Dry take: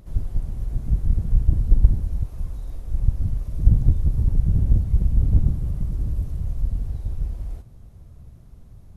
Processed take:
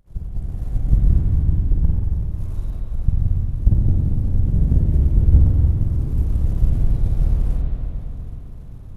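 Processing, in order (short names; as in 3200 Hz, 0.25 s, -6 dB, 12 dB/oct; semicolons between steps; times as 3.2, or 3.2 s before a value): AGC gain up to 14 dB; power-law curve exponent 1.4; pre-echo 0.258 s -22 dB; spring tank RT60 3.3 s, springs 45/57 ms, chirp 40 ms, DRR -3 dB; gain -2 dB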